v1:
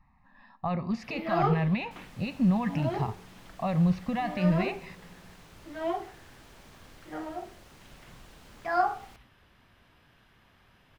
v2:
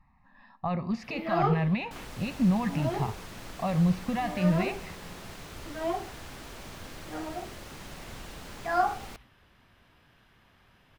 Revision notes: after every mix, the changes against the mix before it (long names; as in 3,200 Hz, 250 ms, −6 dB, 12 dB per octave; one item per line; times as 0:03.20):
second sound +10.0 dB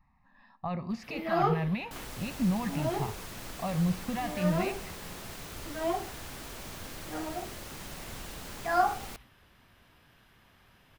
speech −4.0 dB
master: add high-shelf EQ 8,000 Hz +9 dB